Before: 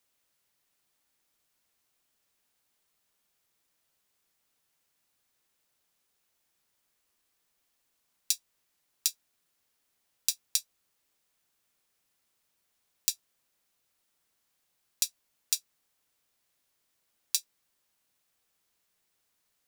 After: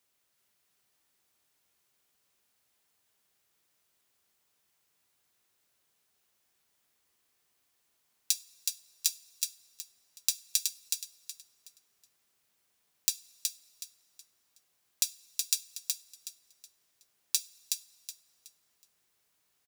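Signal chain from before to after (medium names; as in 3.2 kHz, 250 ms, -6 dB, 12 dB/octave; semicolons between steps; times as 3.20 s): high-pass 46 Hz; on a send: feedback delay 371 ms, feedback 28%, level -4 dB; on the sum: two-slope reverb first 0.32 s, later 2.3 s, from -18 dB, DRR 13.5 dB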